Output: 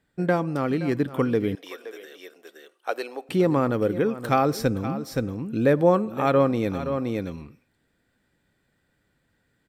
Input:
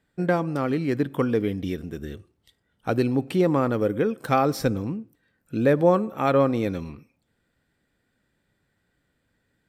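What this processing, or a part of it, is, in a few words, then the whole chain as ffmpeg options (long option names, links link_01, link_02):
ducked delay: -filter_complex "[0:a]asplit=3[link_01][link_02][link_03];[link_02]adelay=521,volume=-2.5dB[link_04];[link_03]apad=whole_len=450179[link_05];[link_04][link_05]sidechaincompress=threshold=-37dB:ratio=6:attack=32:release=273[link_06];[link_01][link_06]amix=inputs=2:normalize=0,asettb=1/sr,asplit=3[link_07][link_08][link_09];[link_07]atrim=end=1.554[link_10];[link_08]atrim=start=1.55:end=3.29,asetpts=PTS-STARTPTS,afade=type=in:duration=0.004:curve=qsin,afade=type=out:start_time=1.736:duration=0.004:curve=qsin,highpass=frequency=490:width=0.5412,highpass=frequency=490:width=1.3066[link_11];[link_09]atrim=start=3.286[link_12];[link_10][link_11]acrossfade=duration=0.004:curve1=hsin:curve2=qsin[link_13];[link_13][link_12]acrossfade=duration=0.004:curve1=qsin:curve2=hsin"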